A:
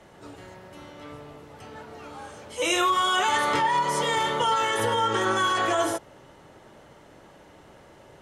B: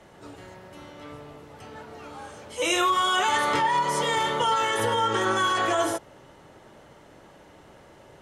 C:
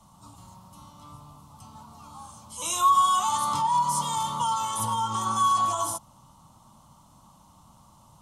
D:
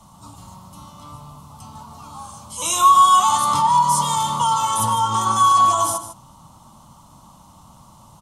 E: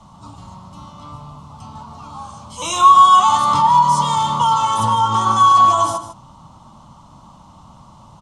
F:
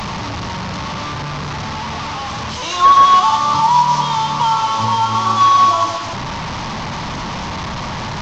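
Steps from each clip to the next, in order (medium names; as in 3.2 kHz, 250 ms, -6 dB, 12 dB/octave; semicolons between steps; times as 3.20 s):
no audible change
FFT filter 220 Hz 0 dB, 420 Hz -25 dB, 1.1 kHz +5 dB, 1.7 kHz -26 dB, 3.4 kHz -5 dB, 9.2 kHz +6 dB
echo from a far wall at 26 m, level -10 dB; trim +7.5 dB
distance through air 100 m; trim +4 dB
one-bit delta coder 32 kbps, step -18 dBFS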